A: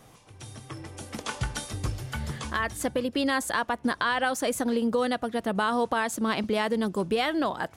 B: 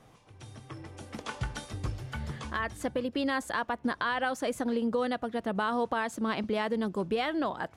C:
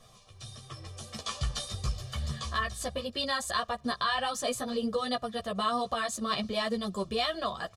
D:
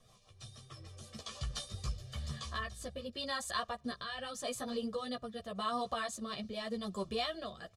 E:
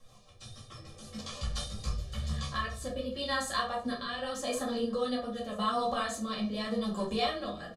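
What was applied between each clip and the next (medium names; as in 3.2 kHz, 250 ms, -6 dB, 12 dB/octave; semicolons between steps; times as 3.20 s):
low-pass 3.6 kHz 6 dB/octave; trim -3.5 dB
comb 1.7 ms, depth 81%; chorus voices 4, 0.8 Hz, delay 12 ms, depth 3.8 ms; graphic EQ 125/500/2000/4000/8000 Hz -6/-8/-8/+7/+4 dB; trim +5 dB
rotary cabinet horn 6.3 Hz, later 0.85 Hz, at 1.29 s; trim -5 dB
delay 988 ms -21.5 dB; simulated room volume 360 m³, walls furnished, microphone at 2.2 m; trim +1 dB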